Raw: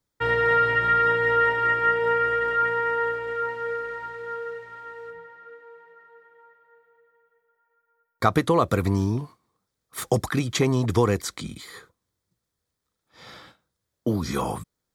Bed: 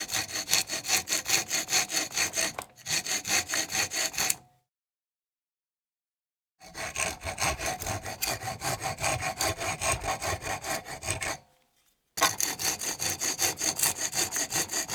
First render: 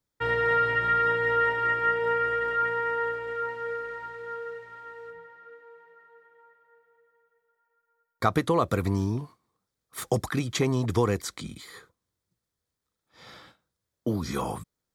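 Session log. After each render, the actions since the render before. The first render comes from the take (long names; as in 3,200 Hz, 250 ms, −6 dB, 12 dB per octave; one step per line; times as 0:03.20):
level −3.5 dB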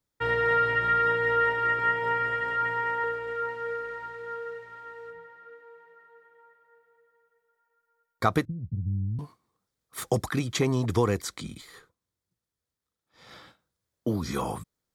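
0:01.78–0:03.04: comb filter 7.4 ms, depth 55%
0:08.45–0:09.19: inverse Chebyshev low-pass filter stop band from 1,000 Hz, stop band 80 dB
0:11.61–0:13.31: tube saturation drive 38 dB, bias 0.7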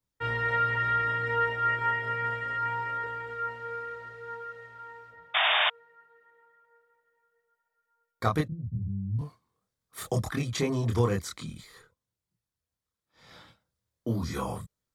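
multi-voice chorus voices 6, 0.45 Hz, delay 26 ms, depth 1.1 ms
0:05.34–0:05.70: sound drawn into the spectrogram noise 600–3,700 Hz −24 dBFS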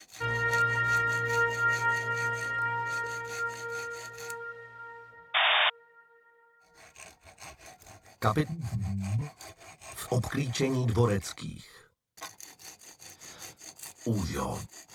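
mix in bed −18.5 dB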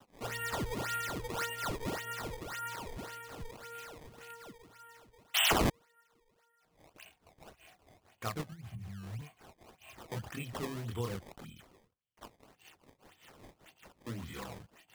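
transistor ladder low-pass 3,200 Hz, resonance 75%
sample-and-hold swept by an LFO 18×, swing 160% 1.8 Hz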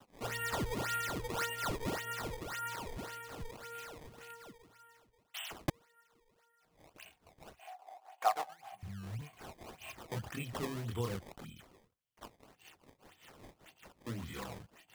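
0:04.05–0:05.68: fade out linear
0:07.59–0:08.83: high-pass with resonance 760 Hz, resonance Q 8.6
0:09.33–0:09.92: mu-law and A-law mismatch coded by mu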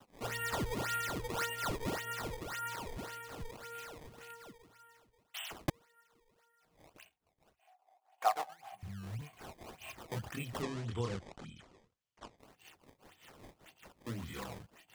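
0:06.96–0:08.25: duck −16 dB, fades 0.14 s
0:10.62–0:12.38: low-pass filter 7,900 Hz 24 dB per octave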